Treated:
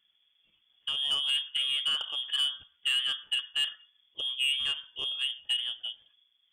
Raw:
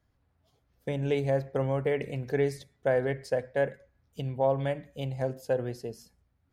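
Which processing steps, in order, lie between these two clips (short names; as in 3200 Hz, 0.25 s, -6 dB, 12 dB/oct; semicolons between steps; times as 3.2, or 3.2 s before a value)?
inverted band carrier 3400 Hz; soft clip -22 dBFS, distortion -14 dB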